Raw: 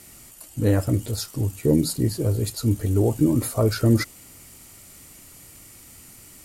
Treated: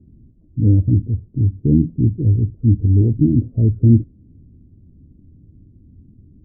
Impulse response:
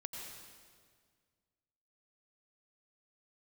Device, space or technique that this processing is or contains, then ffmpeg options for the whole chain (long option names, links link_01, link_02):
the neighbour's flat through the wall: -af "lowpass=frequency=280:width=0.5412,lowpass=frequency=280:width=1.3066,equalizer=frequency=81:width_type=o:width=0.42:gain=4.5,volume=7.5dB"